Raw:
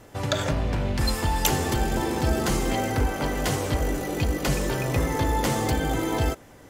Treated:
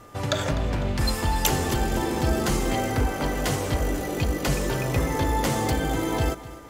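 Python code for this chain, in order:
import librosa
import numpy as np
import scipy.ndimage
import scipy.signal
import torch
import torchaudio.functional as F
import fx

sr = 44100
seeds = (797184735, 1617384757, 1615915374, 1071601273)

p1 = x + 10.0 ** (-49.0 / 20.0) * np.sin(2.0 * np.pi * 1200.0 * np.arange(len(x)) / sr)
y = p1 + fx.echo_feedback(p1, sr, ms=251, feedback_pct=51, wet_db=-17, dry=0)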